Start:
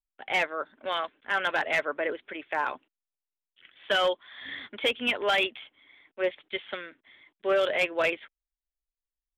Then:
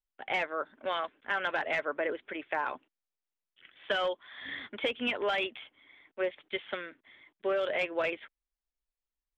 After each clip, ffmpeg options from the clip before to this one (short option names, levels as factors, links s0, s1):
-af "aemphasis=mode=reproduction:type=50fm,acompressor=threshold=0.0447:ratio=6"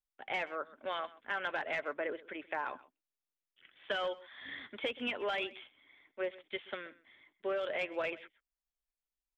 -af "aecho=1:1:128:0.106,volume=0.562"